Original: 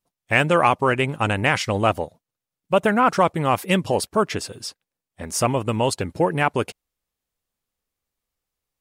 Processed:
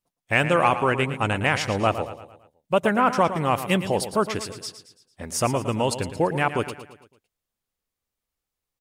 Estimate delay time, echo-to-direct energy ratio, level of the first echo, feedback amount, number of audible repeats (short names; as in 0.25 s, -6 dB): 0.112 s, -10.5 dB, -11.5 dB, 48%, 4